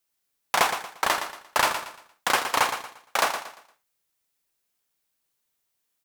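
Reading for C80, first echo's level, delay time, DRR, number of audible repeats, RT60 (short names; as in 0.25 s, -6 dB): none, -9.0 dB, 0.116 s, none, 3, none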